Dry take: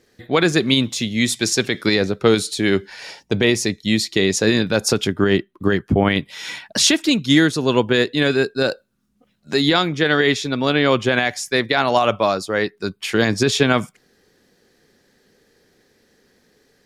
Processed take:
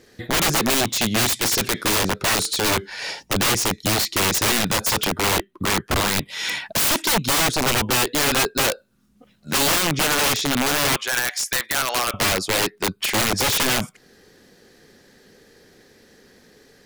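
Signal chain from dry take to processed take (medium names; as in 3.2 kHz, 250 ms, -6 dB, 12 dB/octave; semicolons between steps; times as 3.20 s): 10.96–12.14 s: high-pass 1.2 kHz 12 dB/octave; in parallel at +1.5 dB: compression 8:1, threshold -30 dBFS, peak gain reduction 20 dB; on the sum: integer overflow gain 14 dB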